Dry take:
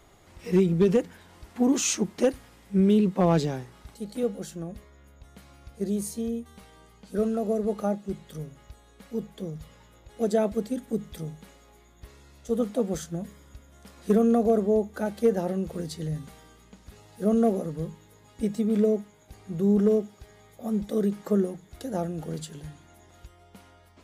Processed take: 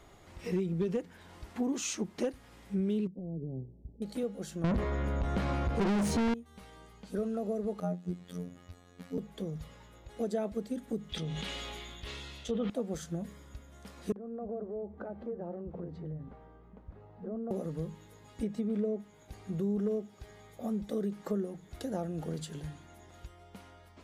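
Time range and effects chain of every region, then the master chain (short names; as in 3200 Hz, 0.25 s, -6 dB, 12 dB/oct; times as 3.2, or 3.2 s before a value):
3.07–4.02 compressor 10:1, threshold -29 dBFS + Gaussian blur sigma 20 samples
4.64–6.34 tilt -4.5 dB/oct + overdrive pedal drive 40 dB, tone 6200 Hz, clips at -9.5 dBFS
7.8–9.18 bell 220 Hz +10 dB 0.4 oct + robotiser 88.6 Hz
11.09–12.7 bell 3200 Hz +14.5 dB 1.1 oct + treble ducked by the level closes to 2400 Hz, closed at -25 dBFS + sustainer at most 22 dB/s
14.12–17.51 LPF 1000 Hz + compressor 3:1, threshold -37 dBFS + bands offset in time lows, highs 40 ms, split 210 Hz
18.43–19 high shelf 3800 Hz -11 dB + mismatched tape noise reduction encoder only
whole clip: compressor 2.5:1, threshold -34 dBFS; high shelf 7200 Hz -6 dB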